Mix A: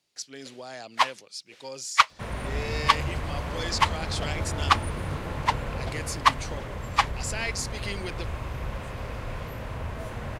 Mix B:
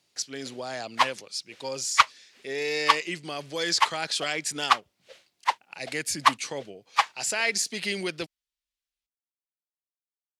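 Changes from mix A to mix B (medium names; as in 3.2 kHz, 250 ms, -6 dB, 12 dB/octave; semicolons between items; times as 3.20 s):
speech +5.5 dB; second sound: muted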